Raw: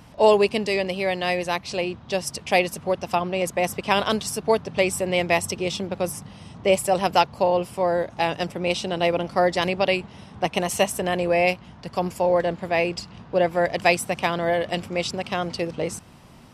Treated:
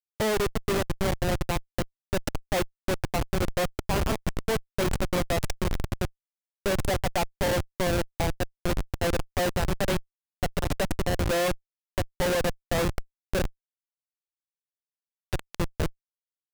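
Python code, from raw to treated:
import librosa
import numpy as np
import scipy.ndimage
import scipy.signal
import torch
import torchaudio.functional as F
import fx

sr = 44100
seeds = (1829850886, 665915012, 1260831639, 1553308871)

y = fx.echo_wet_highpass(x, sr, ms=486, feedback_pct=68, hz=3200.0, wet_db=-10)
y = fx.spec_box(y, sr, start_s=13.42, length_s=1.87, low_hz=400.0, high_hz=11000.0, gain_db=-23)
y = fx.schmitt(y, sr, flips_db=-20.0)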